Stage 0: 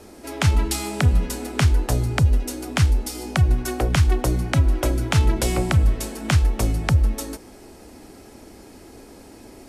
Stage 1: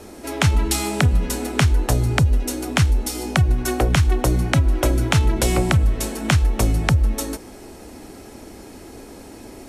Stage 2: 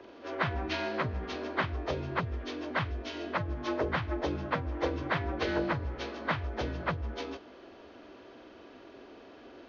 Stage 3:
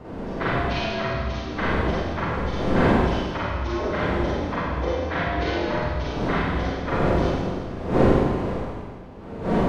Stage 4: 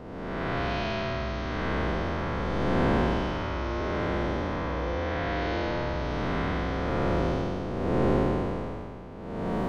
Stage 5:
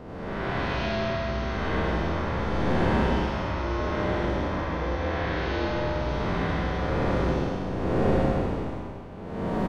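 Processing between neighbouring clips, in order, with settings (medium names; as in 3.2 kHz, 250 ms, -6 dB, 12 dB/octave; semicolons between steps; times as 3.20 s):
band-stop 4.8 kHz, Q 20; compression, threshold -17 dBFS, peak gain reduction 6 dB; trim +4.5 dB
frequency axis rescaled in octaves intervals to 82%; three-band isolator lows -14 dB, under 310 Hz, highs -22 dB, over 3.1 kHz; trim -5 dB
expander on every frequency bin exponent 1.5; wind noise 450 Hz -35 dBFS; Schroeder reverb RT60 1.8 s, combs from 33 ms, DRR -9 dB
spectral blur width 347 ms; trim -2.5 dB
delay 84 ms -3 dB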